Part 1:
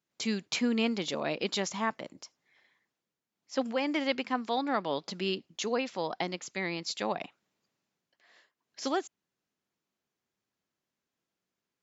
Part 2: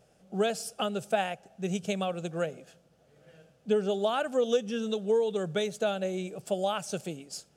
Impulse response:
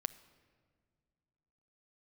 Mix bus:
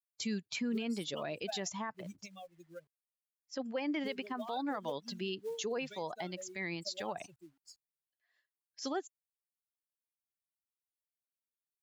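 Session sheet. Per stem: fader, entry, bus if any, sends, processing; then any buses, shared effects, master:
+0.5 dB, 0.00 s, no send, expander on every frequency bin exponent 1.5
-11.0 dB, 0.35 s, no send, expander on every frequency bin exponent 3; companded quantiser 6-bit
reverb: none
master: peak limiter -28 dBFS, peak gain reduction 11 dB

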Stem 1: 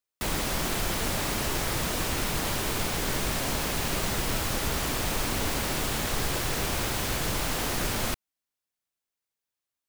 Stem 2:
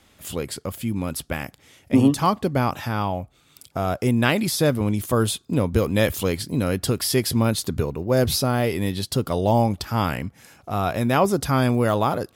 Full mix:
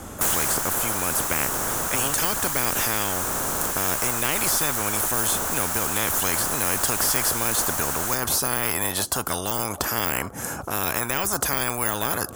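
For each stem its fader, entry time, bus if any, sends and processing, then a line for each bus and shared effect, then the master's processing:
-2.0 dB, 0.00 s, no send, auto duck -9 dB, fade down 0.65 s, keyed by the second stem
+2.5 dB, 0.00 s, no send, de-esser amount 80%; band-stop 3.8 kHz, Q 23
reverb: none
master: high-order bell 3.1 kHz -13 dB; spectrum-flattening compressor 10:1

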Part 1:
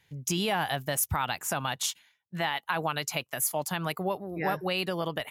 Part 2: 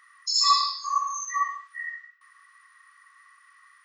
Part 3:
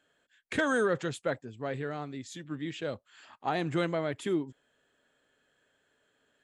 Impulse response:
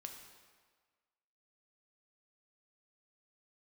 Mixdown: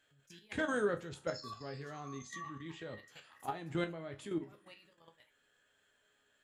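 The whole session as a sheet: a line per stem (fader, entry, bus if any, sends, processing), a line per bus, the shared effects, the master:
-7.5 dB, 0.00 s, no send, low-pass 4 kHz 6 dB/octave; trance gate "xx.x.xxx" 153 bpm -12 dB; Shepard-style phaser falling 0.43 Hz; auto duck -9 dB, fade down 0.30 s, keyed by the third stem
1.89 s -20 dB -> 2.25 s -11 dB, 1.00 s, send -6.5 dB, drifting ripple filter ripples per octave 0.56, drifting -2.9 Hz, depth 13 dB
+2.5 dB, 0.00 s, send -11.5 dB, bass shelf 110 Hz +9.5 dB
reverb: on, RT60 1.5 s, pre-delay 3 ms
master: level held to a coarse grid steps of 12 dB; chord resonator C#2 minor, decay 0.22 s; tape noise reduction on one side only encoder only

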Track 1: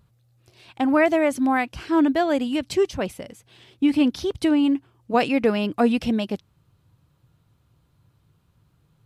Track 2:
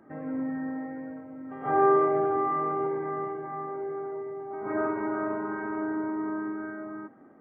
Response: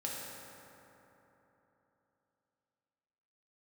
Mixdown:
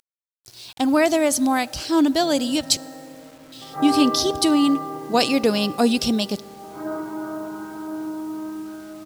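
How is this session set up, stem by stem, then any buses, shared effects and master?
+0.5 dB, 0.00 s, muted 2.77–3.52 s, send -21 dB, resonant high shelf 3.2 kHz +13.5 dB, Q 1.5
-3.0 dB, 2.10 s, no send, comb 6.1 ms, depth 71%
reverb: on, RT60 3.5 s, pre-delay 3 ms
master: bit crusher 8-bit

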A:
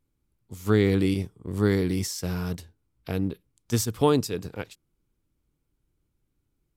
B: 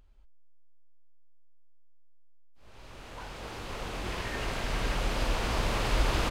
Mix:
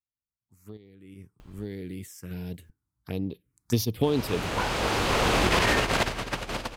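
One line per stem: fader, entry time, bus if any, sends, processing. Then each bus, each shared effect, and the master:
0.98 s -23.5 dB -> 1.24 s -11 dB -> 3.37 s -11 dB -> 3.90 s -2.5 dB, 0.00 s, no send, compression 6:1, threshold -23 dBFS, peak gain reduction 8 dB; random-step tremolo 1.3 Hz, depth 70%; touch-sensitive phaser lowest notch 410 Hz, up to 1.5 kHz, full sweep at -28 dBFS
0.0 dB, 1.40 s, muted 2.70–4.03 s, no send, compressor with a negative ratio -35 dBFS, ratio -0.5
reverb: none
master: high-pass 80 Hz 6 dB/octave; level rider gain up to 10.5 dB

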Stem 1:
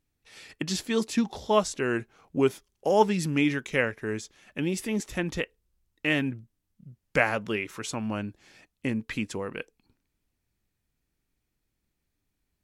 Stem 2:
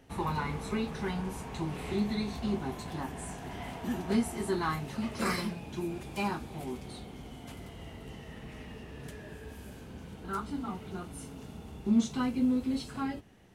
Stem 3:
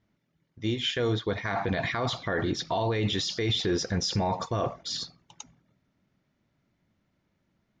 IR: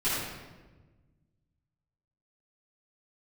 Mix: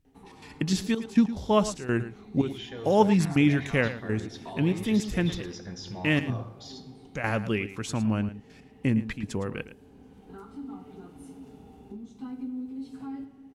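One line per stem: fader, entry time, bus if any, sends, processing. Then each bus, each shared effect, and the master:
-1.0 dB, 0.00 s, no send, echo send -13.5 dB, tone controls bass +10 dB, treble -1 dB; trance gate "xxx.xxxxx..x.x" 143 bpm -12 dB
-11.0 dB, 0.05 s, send -17 dB, no echo send, compression 6:1, threshold -37 dBFS, peak gain reduction 15.5 dB; small resonant body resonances 270/420/780 Hz, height 12 dB; auto duck -10 dB, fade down 0.20 s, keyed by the first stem
-13.5 dB, 1.75 s, send -18 dB, no echo send, none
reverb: on, RT60 1.3 s, pre-delay 4 ms
echo: delay 110 ms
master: none

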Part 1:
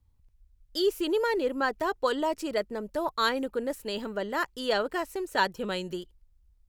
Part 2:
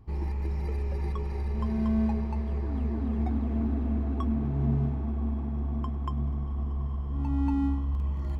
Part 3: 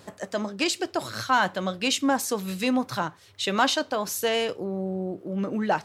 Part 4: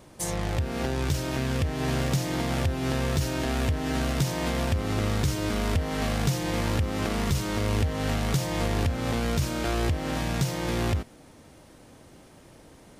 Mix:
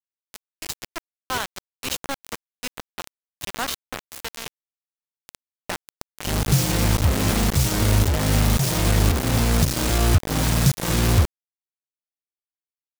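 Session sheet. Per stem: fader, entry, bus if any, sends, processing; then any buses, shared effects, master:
-9.0 dB, 0.50 s, no send, peak limiter -23.5 dBFS, peak gain reduction 11 dB; touch-sensitive low-pass 590–2800 Hz up, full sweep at -30 dBFS
-18.0 dB, 0.00 s, no send, high-pass 67 Hz 12 dB/octave; tone controls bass -7 dB, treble -12 dB
-7.0 dB, 0.00 s, no send, none
0.0 dB, 0.25 s, no send, tone controls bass +10 dB, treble +5 dB; auto duck -22 dB, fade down 0.25 s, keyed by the third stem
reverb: none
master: treble shelf 3 kHz +5.5 dB; volume shaper 112 bpm, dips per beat 1, -12 dB, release 227 ms; bit crusher 4-bit

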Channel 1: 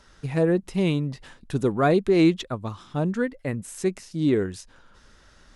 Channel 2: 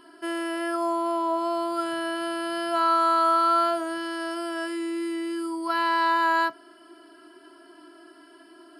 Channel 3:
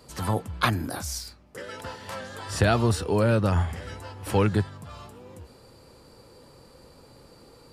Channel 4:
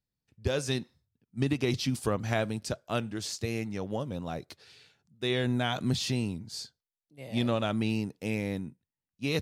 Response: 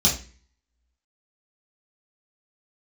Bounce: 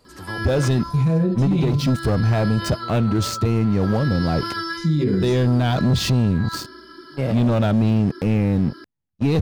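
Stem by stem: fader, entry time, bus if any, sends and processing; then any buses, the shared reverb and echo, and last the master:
-3.5 dB, 0.70 s, muted 1.88–4.77 s, send -8.5 dB, bass shelf 150 Hz +7 dB
+1.0 dB, 0.05 s, send -12 dB, band-stop 6.7 kHz; compressor with a negative ratio -31 dBFS, ratio -1; static phaser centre 2.6 kHz, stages 6
-5.0 dB, 0.00 s, no send, auto duck -16 dB, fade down 1.30 s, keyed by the fourth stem
+3.0 dB, 0.00 s, no send, tilt EQ -3 dB/octave; waveshaping leveller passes 3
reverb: on, RT60 0.35 s, pre-delay 3 ms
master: level rider gain up to 7 dB; peak limiter -12.5 dBFS, peak gain reduction 11.5 dB

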